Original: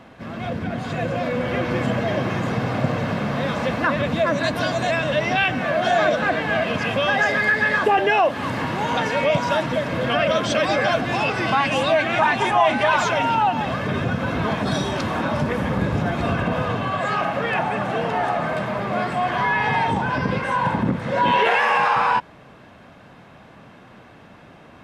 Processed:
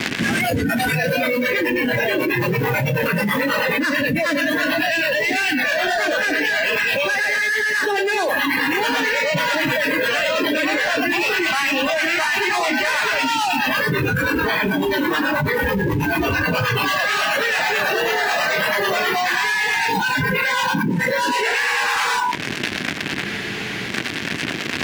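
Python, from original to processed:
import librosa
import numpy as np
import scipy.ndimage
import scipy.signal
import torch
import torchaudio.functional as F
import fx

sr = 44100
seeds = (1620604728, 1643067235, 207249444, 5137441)

p1 = fx.cvsd(x, sr, bps=16000)
p2 = fx.fuzz(p1, sr, gain_db=41.0, gate_db=-41.0)
p3 = p1 + F.gain(torch.from_numpy(p2), -9.0).numpy()
p4 = fx.band_shelf(p3, sr, hz=800.0, db=-12.0, octaves=1.7)
p5 = fx.rider(p4, sr, range_db=3, speed_s=2.0)
p6 = fx.highpass(p5, sr, hz=340.0, slope=6)
p7 = p6 + fx.echo_single(p6, sr, ms=110, db=-11.0, dry=0)
p8 = fx.harmonic_tremolo(p7, sr, hz=9.2, depth_pct=50, crossover_hz=480.0)
p9 = 10.0 ** (-12.0 / 20.0) * np.tanh(p8 / 10.0 ** (-12.0 / 20.0))
p10 = fx.noise_reduce_blind(p9, sr, reduce_db=19)
p11 = fx.spec_freeze(p10, sr, seeds[0], at_s=23.27, hold_s=0.62)
y = fx.env_flatten(p11, sr, amount_pct=100)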